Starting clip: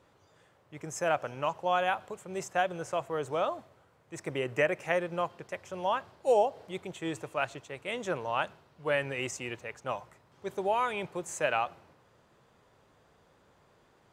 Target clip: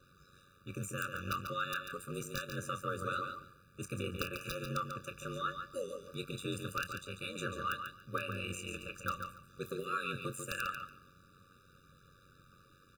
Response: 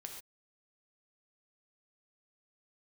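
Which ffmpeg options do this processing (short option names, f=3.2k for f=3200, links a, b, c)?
-filter_complex "[0:a]crystalizer=i=6:c=0,acompressor=threshold=-31dB:ratio=3,highshelf=f=2.6k:g=-9.5,aeval=exprs='(mod(11.9*val(0)+1,2)-1)/11.9':c=same,asplit=2[a][b];[b]adelay=30,volume=-11.5dB[c];[a][c]amix=inputs=2:normalize=0,asplit=2[d][e];[e]aecho=0:1:155|310|465:0.447|0.0759|0.0129[f];[d][f]amix=inputs=2:normalize=0,aeval=exprs='val(0)*sin(2*PI*42*n/s)':c=same,asetrate=48000,aresample=44100,equalizer=f=125:t=o:w=1:g=4,equalizer=f=250:t=o:w=1:g=-3,equalizer=f=500:t=o:w=1:g=-9,equalizer=f=1k:t=o:w=1:g=8,equalizer=f=2k:t=o:w=1:g=-6,equalizer=f=8k:t=o:w=1:g=-7,afftfilt=real='re*eq(mod(floor(b*sr/1024/580),2),0)':imag='im*eq(mod(floor(b*sr/1024/580),2),0)':win_size=1024:overlap=0.75,volume=5.5dB"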